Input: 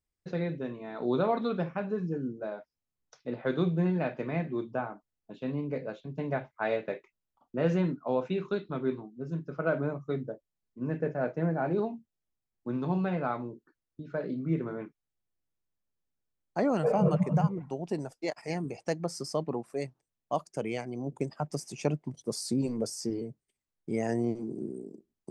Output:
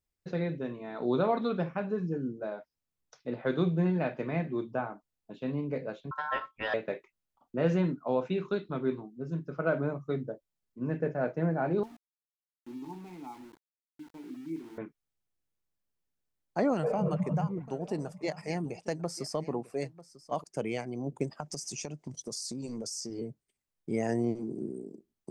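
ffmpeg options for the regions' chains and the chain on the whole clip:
ffmpeg -i in.wav -filter_complex "[0:a]asettb=1/sr,asplit=3[link_01][link_02][link_03];[link_01]atrim=end=6.114[link_04];[link_02]atrim=start=6.11:end=6.74,asetpts=PTS-STARTPTS,afade=type=in:duration=0.004:curve=qsin,afade=type=out:start_time=0.626:duration=0.004:curve=qsin,equalizer=frequency=120:width_type=o:width=0.41:gain=12.5,bandreject=frequency=840:width=5,aeval=exprs='val(0)*sin(2*PI*1200*n/s)':channel_layout=same[link_05];[link_03]atrim=start=6.736[link_06];[link_04][link_05]acrossfade=duration=0.004:curve1=hsin:curve2=qsin[link_07];[link_07][link_06]acrossfade=duration=0.004:curve1=qsin:curve2=hsin,asettb=1/sr,asplit=3[link_08][link_09][link_10];[link_08]atrim=end=11.834[link_11];[link_09]atrim=start=11.83:end=14.78,asetpts=PTS-STARTPTS,afade=type=in:duration=0.004:curve=qsin,afade=type=out:start_time=2.946:duration=0.004:curve=qsin,asplit=3[link_12][link_13][link_14];[link_12]bandpass=frequency=300:width_type=q:width=8,volume=0dB[link_15];[link_13]bandpass=frequency=870:width_type=q:width=8,volume=-6dB[link_16];[link_14]bandpass=frequency=2240:width_type=q:width=8,volume=-9dB[link_17];[link_15][link_16][link_17]amix=inputs=3:normalize=0,aeval=exprs='val(0)*gte(abs(val(0)),0.00251)':channel_layout=same[link_18];[link_10]atrim=start=14.776[link_19];[link_11][link_18]acrossfade=duration=0.004:curve1=hsin:curve2=qsin[link_20];[link_20][link_19]acrossfade=duration=0.004:curve1=qsin:curve2=hsin,asettb=1/sr,asplit=3[link_21][link_22][link_23];[link_21]atrim=end=16.734[link_24];[link_22]atrim=start=16.73:end=20.44,asetpts=PTS-STARTPTS,afade=type=in:duration=0.004:curve=qsin,afade=type=out:start_time=3.706:duration=0.004:curve=qsin,acompressor=threshold=-26dB:ratio=3:attack=3.2:release=140:knee=1:detection=peak,aecho=1:1:945:0.133,atrim=end_sample=163611[link_25];[link_23]atrim=start=20.436[link_26];[link_24][link_25]acrossfade=duration=0.004:curve1=hsin:curve2=qsin[link_27];[link_27][link_26]acrossfade=duration=0.004:curve1=qsin:curve2=hsin,asettb=1/sr,asplit=3[link_28][link_29][link_30];[link_28]atrim=end=21.404[link_31];[link_29]atrim=start=21.4:end=23.19,asetpts=PTS-STARTPTS,afade=type=in:duration=0.004:curve=qsin,afade=type=out:start_time=1.786:duration=0.004:curve=qsin,equalizer=frequency=6200:width_type=o:width=1.2:gain=13,acompressor=threshold=-34dB:ratio=12:attack=3.2:release=140:knee=1:detection=peak[link_32];[link_30]atrim=start=23.186[link_33];[link_31][link_32]acrossfade=duration=0.004:curve1=hsin:curve2=qsin[link_34];[link_34][link_33]acrossfade=duration=0.004:curve1=qsin:curve2=hsin" out.wav

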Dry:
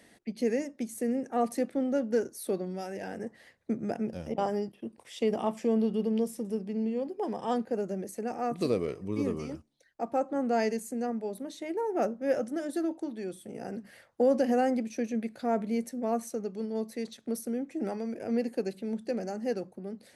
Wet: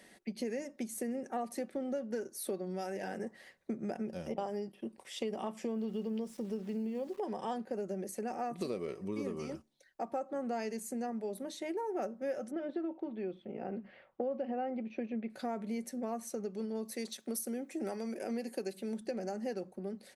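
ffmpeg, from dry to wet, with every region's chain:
ffmpeg -i in.wav -filter_complex "[0:a]asettb=1/sr,asplit=3[link_01][link_02][link_03];[link_01]atrim=end=5.704[link_04];[link_02]atrim=start=5.7:end=7.19,asetpts=PTS-STARTPTS,afade=type=in:duration=0.004:curve=qsin,afade=type=out:start_time=1.486:duration=0.004:curve=qsin,lowpass=6100,aeval=exprs='val(0)*gte(abs(val(0)),0.00266)':channel_layout=same[link_05];[link_03]atrim=start=7.186[link_06];[link_04][link_05]acrossfade=duration=0.004:curve1=hsin:curve2=qsin[link_07];[link_07][link_06]acrossfade=duration=0.004:curve1=qsin:curve2=hsin,asettb=1/sr,asplit=3[link_08][link_09][link_10];[link_08]atrim=end=12.514[link_11];[link_09]atrim=start=12.51:end=15.3,asetpts=PTS-STARTPTS,afade=type=in:duration=0.004:curve=qsin,afade=type=out:start_time=2.786:duration=0.004:curve=qsin,lowpass=frequency=2900:width=0.5412,lowpass=frequency=2900:width=1.3066,equalizer=frequency=1700:width_type=o:width=0.61:gain=-6[link_12];[link_10]atrim=start=15.296[link_13];[link_11][link_12]acrossfade=duration=0.004:curve1=hsin:curve2=qsin[link_14];[link_14][link_13]acrossfade=duration=0.004:curve1=qsin:curve2=hsin,asettb=1/sr,asplit=3[link_15][link_16][link_17];[link_15]atrim=end=16.854[link_18];[link_16]atrim=start=16.85:end=19.01,asetpts=PTS-STARTPTS,afade=type=in:duration=0.004:curve=qsin,afade=type=out:start_time=2.156:duration=0.004:curve=qsin,highpass=180,highshelf=frequency=5700:gain=9.5[link_19];[link_17]atrim=start=19.006[link_20];[link_18][link_19]acrossfade=duration=0.004:curve1=hsin:curve2=qsin[link_21];[link_21][link_20]acrossfade=duration=0.004:curve1=qsin:curve2=hsin,equalizer=frequency=90:width_type=o:width=2.2:gain=-6.5,aecho=1:1:5.3:0.32,acompressor=threshold=-34dB:ratio=5" out.wav

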